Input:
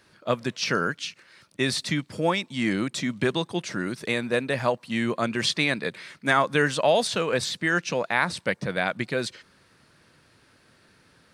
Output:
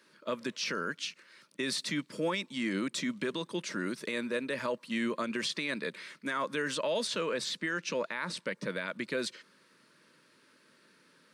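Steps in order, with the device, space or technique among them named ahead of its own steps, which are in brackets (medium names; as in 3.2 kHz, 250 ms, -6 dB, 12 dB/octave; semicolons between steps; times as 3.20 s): PA system with an anti-feedback notch (high-pass 180 Hz 24 dB/octave; Butterworth band-stop 750 Hz, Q 3.4; peak limiter -19.5 dBFS, peak gain reduction 10.5 dB); 6.75–8.57 s: treble shelf 11 kHz -7.5 dB; trim -4 dB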